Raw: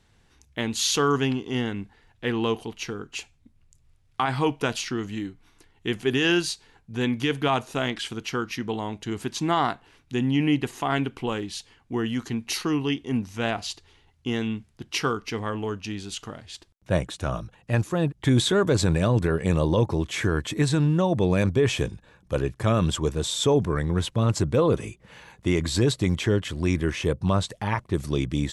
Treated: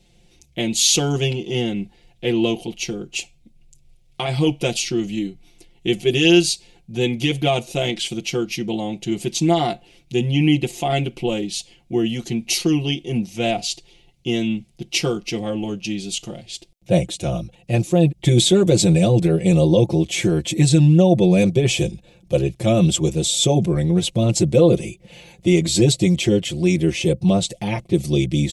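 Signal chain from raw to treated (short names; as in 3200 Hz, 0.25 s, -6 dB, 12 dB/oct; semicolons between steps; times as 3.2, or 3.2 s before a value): band shelf 1300 Hz -15.5 dB 1.2 oct; comb 5.7 ms, depth 99%; dynamic EQ 7800 Hz, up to +4 dB, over -45 dBFS, Q 1.7; gain +4 dB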